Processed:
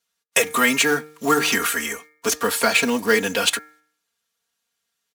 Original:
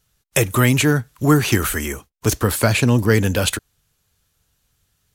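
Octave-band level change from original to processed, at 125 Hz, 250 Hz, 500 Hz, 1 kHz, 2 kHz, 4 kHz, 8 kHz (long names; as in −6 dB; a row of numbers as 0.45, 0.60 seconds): −22.5, −6.5, −1.5, +2.0, +3.0, +2.5, +1.0 decibels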